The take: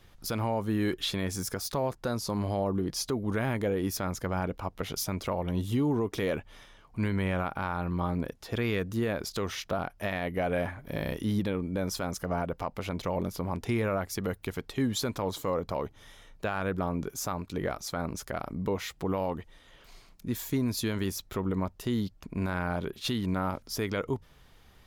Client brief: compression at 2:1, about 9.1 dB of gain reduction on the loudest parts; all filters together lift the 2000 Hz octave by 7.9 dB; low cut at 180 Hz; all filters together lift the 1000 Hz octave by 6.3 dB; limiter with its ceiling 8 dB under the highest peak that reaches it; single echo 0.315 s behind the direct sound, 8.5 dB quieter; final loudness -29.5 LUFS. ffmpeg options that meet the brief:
-af "highpass=180,equalizer=f=1k:t=o:g=6,equalizer=f=2k:t=o:g=8,acompressor=threshold=-39dB:ratio=2,alimiter=level_in=2.5dB:limit=-24dB:level=0:latency=1,volume=-2.5dB,aecho=1:1:315:0.376,volume=10dB"

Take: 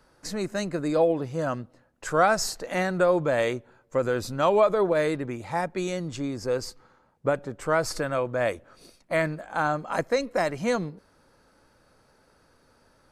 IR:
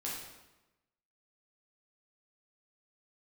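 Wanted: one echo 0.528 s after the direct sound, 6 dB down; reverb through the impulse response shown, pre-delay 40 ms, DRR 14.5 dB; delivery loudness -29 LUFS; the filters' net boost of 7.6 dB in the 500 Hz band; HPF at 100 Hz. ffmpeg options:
-filter_complex "[0:a]highpass=100,equalizer=f=500:t=o:g=9,aecho=1:1:528:0.501,asplit=2[a][b];[1:a]atrim=start_sample=2205,adelay=40[c];[b][c]afir=irnorm=-1:irlink=0,volume=-16dB[d];[a][d]amix=inputs=2:normalize=0,volume=-9.5dB"

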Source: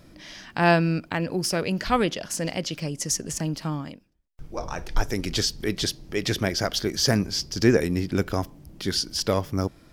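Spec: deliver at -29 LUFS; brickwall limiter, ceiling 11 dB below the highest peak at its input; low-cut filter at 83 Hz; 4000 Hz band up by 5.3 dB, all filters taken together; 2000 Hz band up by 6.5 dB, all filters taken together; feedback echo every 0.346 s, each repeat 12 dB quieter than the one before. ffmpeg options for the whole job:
-af "highpass=83,equalizer=f=2k:t=o:g=7,equalizer=f=4k:t=o:g=5.5,alimiter=limit=-11dB:level=0:latency=1,aecho=1:1:346|692|1038:0.251|0.0628|0.0157,volume=-4.5dB"

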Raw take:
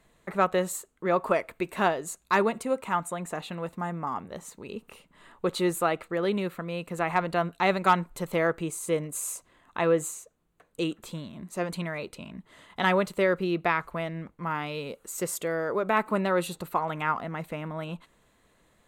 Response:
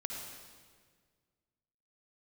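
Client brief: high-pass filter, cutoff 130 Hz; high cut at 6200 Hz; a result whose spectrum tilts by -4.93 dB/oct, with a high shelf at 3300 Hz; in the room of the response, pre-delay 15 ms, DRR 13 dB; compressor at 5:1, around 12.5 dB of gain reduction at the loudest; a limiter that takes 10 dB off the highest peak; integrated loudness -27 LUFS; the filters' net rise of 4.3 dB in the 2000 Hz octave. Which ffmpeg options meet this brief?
-filter_complex "[0:a]highpass=130,lowpass=6.2k,equalizer=f=2k:t=o:g=6.5,highshelf=f=3.3k:g=-4,acompressor=threshold=-30dB:ratio=5,alimiter=level_in=0.5dB:limit=-24dB:level=0:latency=1,volume=-0.5dB,asplit=2[a][b];[1:a]atrim=start_sample=2205,adelay=15[c];[b][c]afir=irnorm=-1:irlink=0,volume=-13.5dB[d];[a][d]amix=inputs=2:normalize=0,volume=10.5dB"

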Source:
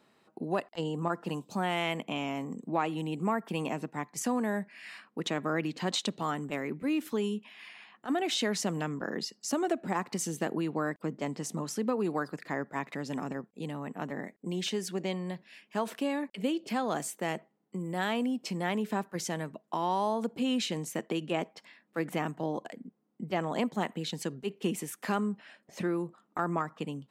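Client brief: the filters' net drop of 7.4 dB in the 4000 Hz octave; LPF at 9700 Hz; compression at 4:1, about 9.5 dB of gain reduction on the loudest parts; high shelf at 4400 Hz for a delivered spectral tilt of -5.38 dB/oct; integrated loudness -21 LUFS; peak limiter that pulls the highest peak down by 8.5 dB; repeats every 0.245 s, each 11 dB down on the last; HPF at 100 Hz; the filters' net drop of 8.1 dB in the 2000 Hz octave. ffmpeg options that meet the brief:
-af "highpass=100,lowpass=9.7k,equalizer=f=2k:t=o:g=-8.5,equalizer=f=4k:t=o:g=-4,highshelf=f=4.4k:g=-4.5,acompressor=threshold=-38dB:ratio=4,alimiter=level_in=9.5dB:limit=-24dB:level=0:latency=1,volume=-9.5dB,aecho=1:1:245|490|735:0.282|0.0789|0.0221,volume=22.5dB"

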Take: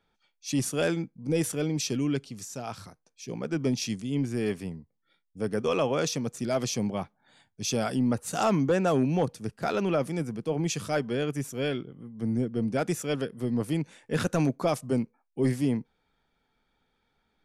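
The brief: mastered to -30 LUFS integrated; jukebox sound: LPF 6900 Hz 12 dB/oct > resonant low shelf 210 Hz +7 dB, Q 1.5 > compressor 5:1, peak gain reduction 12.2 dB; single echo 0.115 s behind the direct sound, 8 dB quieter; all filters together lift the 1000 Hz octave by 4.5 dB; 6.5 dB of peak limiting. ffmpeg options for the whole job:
-af "equalizer=f=1k:t=o:g=7,alimiter=limit=-17dB:level=0:latency=1,lowpass=6.9k,lowshelf=f=210:t=q:w=1.5:g=7,aecho=1:1:115:0.398,acompressor=threshold=-30dB:ratio=5,volume=4dB"

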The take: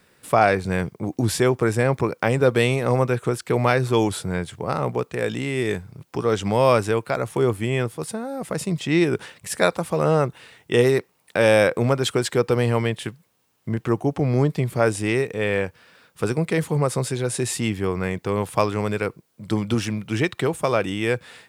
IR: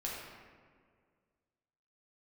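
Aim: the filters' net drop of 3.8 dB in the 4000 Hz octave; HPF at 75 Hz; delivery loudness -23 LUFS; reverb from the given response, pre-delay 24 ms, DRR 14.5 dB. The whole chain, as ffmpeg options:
-filter_complex "[0:a]highpass=75,equalizer=f=4k:t=o:g=-5,asplit=2[a][b];[1:a]atrim=start_sample=2205,adelay=24[c];[b][c]afir=irnorm=-1:irlink=0,volume=-16.5dB[d];[a][d]amix=inputs=2:normalize=0,volume=-0.5dB"

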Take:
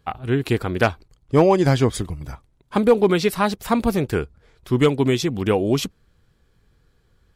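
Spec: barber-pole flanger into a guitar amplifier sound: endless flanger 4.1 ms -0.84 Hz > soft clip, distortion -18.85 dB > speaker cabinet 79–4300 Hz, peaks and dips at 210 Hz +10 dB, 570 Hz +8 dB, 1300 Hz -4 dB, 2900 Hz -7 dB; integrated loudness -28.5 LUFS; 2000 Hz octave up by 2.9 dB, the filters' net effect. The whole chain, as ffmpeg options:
-filter_complex "[0:a]equalizer=f=2k:t=o:g=6,asplit=2[a][b];[b]adelay=4.1,afreqshift=-0.84[c];[a][c]amix=inputs=2:normalize=1,asoftclip=threshold=-9.5dB,highpass=79,equalizer=f=210:t=q:w=4:g=10,equalizer=f=570:t=q:w=4:g=8,equalizer=f=1.3k:t=q:w=4:g=-4,equalizer=f=2.9k:t=q:w=4:g=-7,lowpass=f=4.3k:w=0.5412,lowpass=f=4.3k:w=1.3066,volume=-8dB"

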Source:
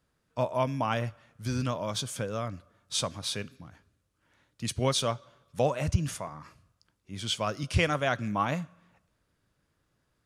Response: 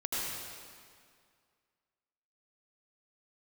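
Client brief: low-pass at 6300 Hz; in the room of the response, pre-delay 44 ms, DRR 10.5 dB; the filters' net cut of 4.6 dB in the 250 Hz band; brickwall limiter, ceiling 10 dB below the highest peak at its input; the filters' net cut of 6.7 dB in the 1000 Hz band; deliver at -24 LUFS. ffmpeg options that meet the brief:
-filter_complex "[0:a]lowpass=6.3k,equalizer=f=250:t=o:g=-6,equalizer=f=1k:t=o:g=-8.5,alimiter=limit=-23.5dB:level=0:latency=1,asplit=2[a][b];[1:a]atrim=start_sample=2205,adelay=44[c];[b][c]afir=irnorm=-1:irlink=0,volume=-16.5dB[d];[a][d]amix=inputs=2:normalize=0,volume=12dB"

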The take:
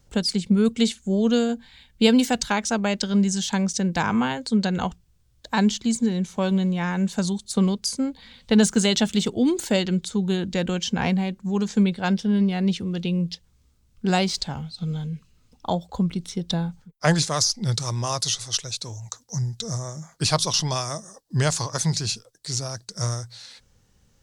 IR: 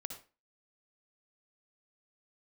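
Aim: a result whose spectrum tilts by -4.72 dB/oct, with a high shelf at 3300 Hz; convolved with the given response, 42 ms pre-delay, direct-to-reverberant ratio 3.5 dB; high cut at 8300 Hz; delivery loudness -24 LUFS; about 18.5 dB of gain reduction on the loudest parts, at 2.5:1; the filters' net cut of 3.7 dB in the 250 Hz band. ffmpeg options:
-filter_complex "[0:a]lowpass=8.3k,equalizer=f=250:t=o:g=-5,highshelf=f=3.3k:g=-4.5,acompressor=threshold=-45dB:ratio=2.5,asplit=2[a][b];[1:a]atrim=start_sample=2205,adelay=42[c];[b][c]afir=irnorm=-1:irlink=0,volume=-1.5dB[d];[a][d]amix=inputs=2:normalize=0,volume=16dB"

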